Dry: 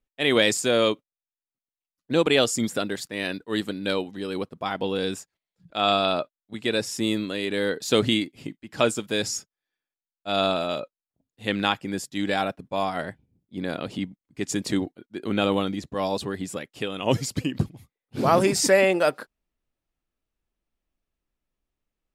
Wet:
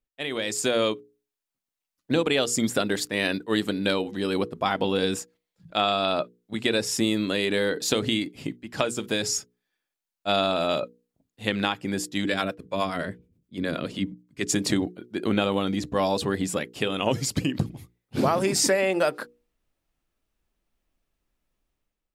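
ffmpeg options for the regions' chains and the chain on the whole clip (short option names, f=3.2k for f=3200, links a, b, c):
-filter_complex "[0:a]asettb=1/sr,asplit=3[a][b][c];[a]atrim=end=12.254[d];[b]atrim=start=12.25:end=14.53,asetpts=PTS-STARTPTS,afade=t=in:d=0.004:c=qsin,afade=t=out:st=2.276:d=0.004:c=qsin,equalizer=f=800:t=o:w=0.31:g=-11.5,acrossover=split=450[e][f];[e]aeval=exprs='val(0)*(1-0.7/2+0.7/2*cos(2*PI*9.5*n/s))':c=same[g];[f]aeval=exprs='val(0)*(1-0.7/2-0.7/2*cos(2*PI*9.5*n/s))':c=same[h];[g][h]amix=inputs=2:normalize=0[i];[c]atrim=start=14.526[j];[d][i]acrossfade=d=0.004:c1=hsin:c2=qsin[k];[k][j]acrossfade=d=0.004:c1=qsin:c2=hsin,acompressor=threshold=-24dB:ratio=12,bandreject=f=60:t=h:w=6,bandreject=f=120:t=h:w=6,bandreject=f=180:t=h:w=6,bandreject=f=240:t=h:w=6,bandreject=f=300:t=h:w=6,bandreject=f=360:t=h:w=6,bandreject=f=420:t=h:w=6,bandreject=f=480:t=h:w=6,dynaudnorm=f=200:g=5:m=10.5dB,volume=-4.5dB"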